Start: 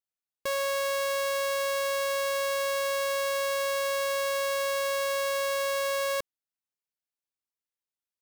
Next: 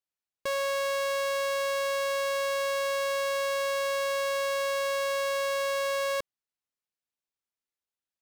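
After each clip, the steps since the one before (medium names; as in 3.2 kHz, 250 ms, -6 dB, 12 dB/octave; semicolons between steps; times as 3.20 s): treble shelf 10 kHz -9 dB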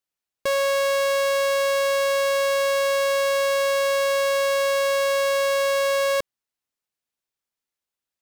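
waveshaping leveller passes 1; trim +6.5 dB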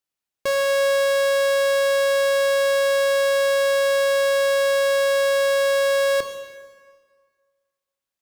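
plate-style reverb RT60 1.7 s, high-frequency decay 0.8×, pre-delay 0 ms, DRR 7 dB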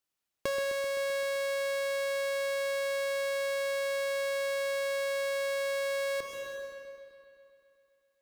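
compression 5:1, threshold -32 dBFS, peak gain reduction 12 dB; bucket-brigade echo 129 ms, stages 4096, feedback 72%, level -9.5 dB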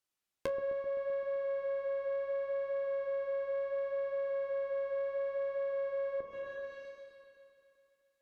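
low-pass that closes with the level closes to 870 Hz, closed at -33.5 dBFS; flange 0.7 Hz, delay 8.3 ms, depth 6.3 ms, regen -50%; trim +2 dB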